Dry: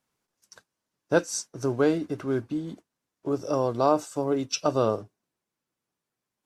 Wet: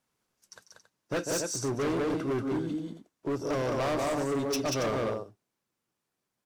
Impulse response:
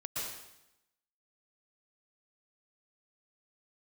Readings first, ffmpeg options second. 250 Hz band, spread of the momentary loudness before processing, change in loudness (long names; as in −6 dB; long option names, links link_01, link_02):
−3.0 dB, 9 LU, −4.0 dB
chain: -filter_complex "[0:a]asplit=2[link_01][link_02];[link_02]aecho=0:1:145.8|186.6|277:0.251|0.631|0.251[link_03];[link_01][link_03]amix=inputs=2:normalize=0,volume=26.5dB,asoftclip=hard,volume=-26.5dB"